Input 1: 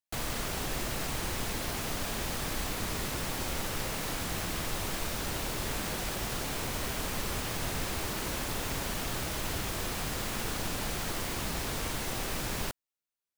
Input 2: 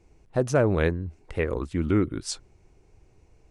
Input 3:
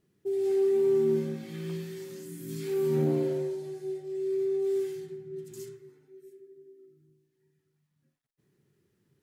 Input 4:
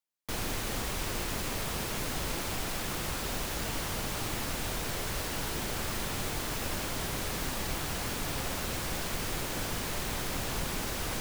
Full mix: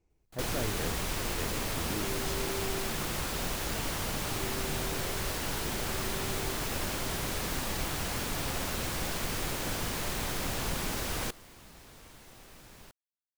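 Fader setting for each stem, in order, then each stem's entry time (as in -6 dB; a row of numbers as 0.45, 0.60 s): -18.5, -15.5, -15.5, +0.5 dB; 0.20, 0.00, 1.70, 0.10 s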